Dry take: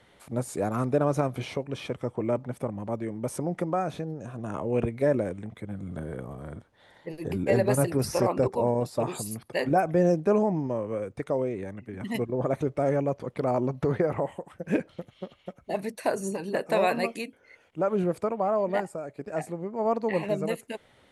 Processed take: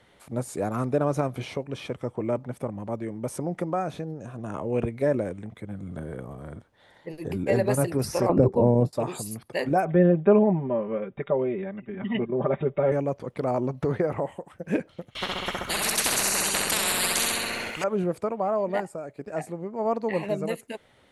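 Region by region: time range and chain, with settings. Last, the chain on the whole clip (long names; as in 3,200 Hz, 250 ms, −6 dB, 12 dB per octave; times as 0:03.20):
0:08.29–0:08.93: downward expander −35 dBFS + tilt shelving filter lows +9.5 dB, about 760 Hz + multiband upward and downward compressor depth 70%
0:09.85–0:12.92: linear-phase brick-wall low-pass 3,800 Hz + comb filter 5.1 ms, depth 92%
0:15.15–0:17.84: flutter between parallel walls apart 11.2 metres, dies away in 0.89 s + every bin compressed towards the loudest bin 10 to 1
whole clip: no processing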